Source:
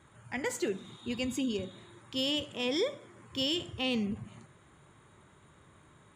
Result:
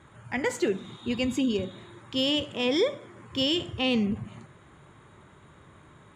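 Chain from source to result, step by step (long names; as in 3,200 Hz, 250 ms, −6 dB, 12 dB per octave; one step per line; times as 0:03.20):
high-shelf EQ 6,600 Hz −10.5 dB
level +6.5 dB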